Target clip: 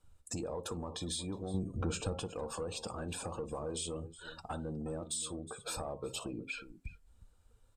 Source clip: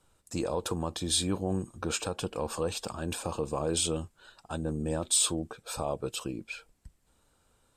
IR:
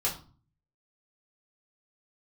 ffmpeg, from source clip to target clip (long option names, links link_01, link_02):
-filter_complex "[0:a]bandreject=frequency=134:width_type=h:width=4,bandreject=frequency=268:width_type=h:width=4,bandreject=frequency=402:width_type=h:width=4,bandreject=frequency=536:width_type=h:width=4,bandreject=frequency=670:width_type=h:width=4,bandreject=frequency=804:width_type=h:width=4,bandreject=frequency=938:width_type=h:width=4,bandreject=frequency=1072:width_type=h:width=4,bandreject=frequency=1206:width_type=h:width=4,bandreject=frequency=1340:width_type=h:width=4,bandreject=frequency=1474:width_type=h:width=4,acompressor=threshold=-44dB:ratio=6,aecho=1:1:57|364:0.126|0.188,asplit=2[link_01][link_02];[1:a]atrim=start_sample=2205,atrim=end_sample=4410[link_03];[link_02][link_03]afir=irnorm=-1:irlink=0,volume=-20.5dB[link_04];[link_01][link_04]amix=inputs=2:normalize=0,asoftclip=type=tanh:threshold=-38dB,asettb=1/sr,asplit=3[link_05][link_06][link_07];[link_05]atrim=end=1.544[link_08];[link_06]atrim=start=1.54:end=2.2,asetpts=PTS-STARTPTS,afade=type=in:duration=0.004:curve=qsin,afade=type=out:start_time=0.656:duration=0.004:curve=qsin,lowshelf=frequency=310:gain=9.5[link_09];[link_07]atrim=start=2.196[link_10];[link_08][link_09]acrossfade=duration=0.004:curve1=hsin:curve2=qsin[link_11];[link_11][link_10]acrossfade=duration=0.004:curve1=qsin:curve2=hsin,afftdn=noise_reduction=16:noise_floor=-57,volume=7.5dB"